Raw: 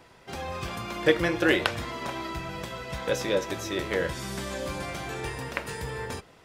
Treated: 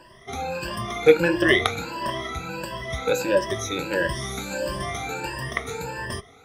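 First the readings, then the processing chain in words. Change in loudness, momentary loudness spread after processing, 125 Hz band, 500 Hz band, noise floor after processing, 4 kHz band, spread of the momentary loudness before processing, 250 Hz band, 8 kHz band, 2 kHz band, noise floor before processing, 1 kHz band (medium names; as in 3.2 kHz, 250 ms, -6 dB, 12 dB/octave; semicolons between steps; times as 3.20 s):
+5.0 dB, 13 LU, +3.0 dB, +6.0 dB, -50 dBFS, +4.0 dB, 12 LU, +3.0 dB, +5.0 dB, +4.5 dB, -55 dBFS, +5.0 dB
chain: drifting ripple filter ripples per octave 1.3, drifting +1.5 Hz, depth 23 dB; trim -1 dB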